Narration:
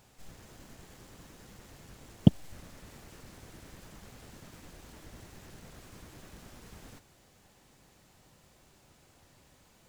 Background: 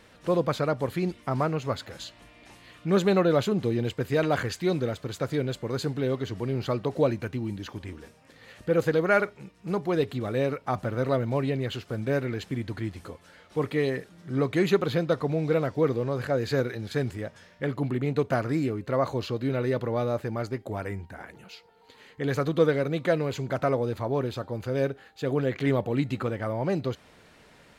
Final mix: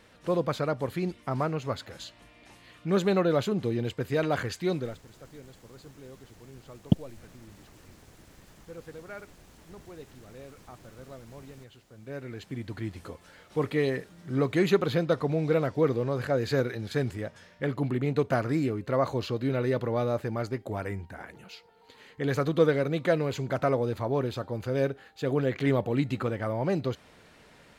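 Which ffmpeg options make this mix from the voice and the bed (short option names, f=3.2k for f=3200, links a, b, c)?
-filter_complex "[0:a]adelay=4650,volume=-3dB[a];[1:a]volume=17.5dB,afade=t=out:st=4.73:d=0.32:silence=0.125893,afade=t=in:st=11.94:d=1.18:silence=0.1[b];[a][b]amix=inputs=2:normalize=0"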